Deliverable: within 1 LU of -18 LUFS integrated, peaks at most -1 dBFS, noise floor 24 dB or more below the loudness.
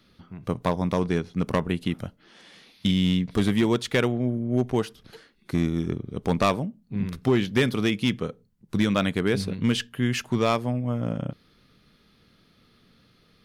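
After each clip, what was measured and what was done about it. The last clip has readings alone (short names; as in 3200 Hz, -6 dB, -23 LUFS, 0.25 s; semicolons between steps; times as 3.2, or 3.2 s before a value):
clipped 0.6%; flat tops at -14.0 dBFS; loudness -26.0 LUFS; peak -14.0 dBFS; loudness target -18.0 LUFS
-> clip repair -14 dBFS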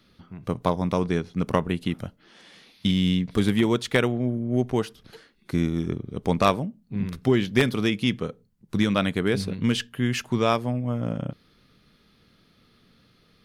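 clipped 0.0%; loudness -25.5 LUFS; peak -5.0 dBFS; loudness target -18.0 LUFS
-> gain +7.5 dB; limiter -1 dBFS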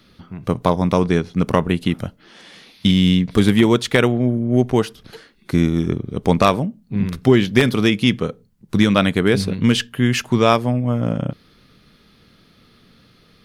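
loudness -18.0 LUFS; peak -1.0 dBFS; noise floor -54 dBFS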